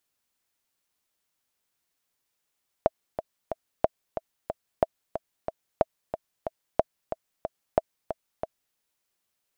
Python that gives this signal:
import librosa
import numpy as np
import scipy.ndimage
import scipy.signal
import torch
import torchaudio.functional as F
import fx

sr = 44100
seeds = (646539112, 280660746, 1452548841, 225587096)

y = fx.click_track(sr, bpm=183, beats=3, bars=6, hz=647.0, accent_db=10.0, level_db=-6.0)